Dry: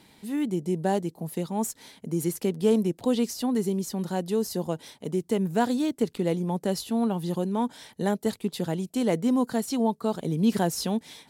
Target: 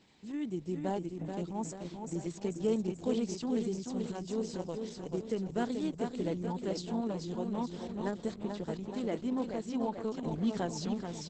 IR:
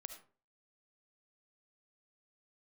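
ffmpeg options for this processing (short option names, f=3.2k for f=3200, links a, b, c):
-filter_complex "[0:a]asplit=3[a][b][c];[a]afade=t=out:st=8.32:d=0.02[d];[b]bass=f=250:g=-3,treble=f=4k:g=-5,afade=t=in:st=8.32:d=0.02,afade=t=out:st=9.97:d=0.02[e];[c]afade=t=in:st=9.97:d=0.02[f];[d][e][f]amix=inputs=3:normalize=0,asplit=2[g][h];[h]aecho=0:1:434|868|1302|1736|2170|2604|3038:0.531|0.297|0.166|0.0932|0.0522|0.0292|0.0164[i];[g][i]amix=inputs=2:normalize=0,volume=-8.5dB" -ar 48000 -c:a libopus -b:a 10k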